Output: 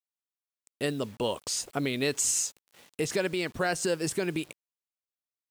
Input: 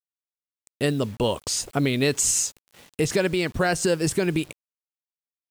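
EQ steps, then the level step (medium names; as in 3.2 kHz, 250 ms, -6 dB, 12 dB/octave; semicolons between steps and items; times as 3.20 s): bass shelf 130 Hz -12 dB; -5.0 dB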